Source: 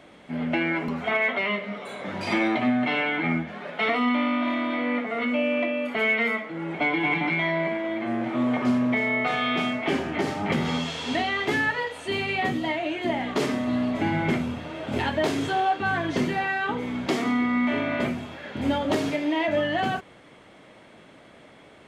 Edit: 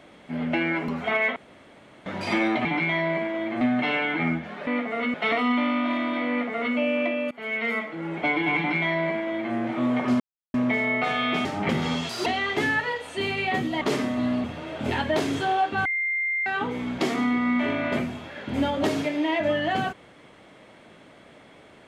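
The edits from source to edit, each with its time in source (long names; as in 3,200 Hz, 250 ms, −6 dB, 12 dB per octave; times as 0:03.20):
0:01.36–0:02.06: fill with room tone
0:04.86–0:05.33: duplicate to 0:03.71
0:05.88–0:06.38: fade in, from −22.5 dB
0:07.15–0:08.11: duplicate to 0:02.65
0:08.77: splice in silence 0.34 s
0:09.68–0:10.28: remove
0:10.92–0:11.17: play speed 145%
0:12.72–0:13.31: remove
0:13.94–0:14.52: remove
0:15.93–0:16.54: beep over 2,100 Hz −23 dBFS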